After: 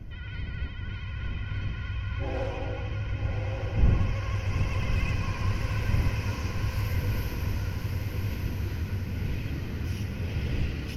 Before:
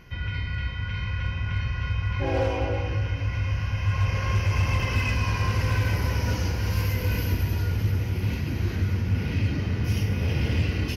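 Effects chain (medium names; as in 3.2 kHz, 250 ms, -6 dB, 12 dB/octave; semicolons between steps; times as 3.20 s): wind noise 88 Hz -26 dBFS; vibrato 13 Hz 55 cents; echo that smears into a reverb 1139 ms, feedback 43%, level -4 dB; trim -8 dB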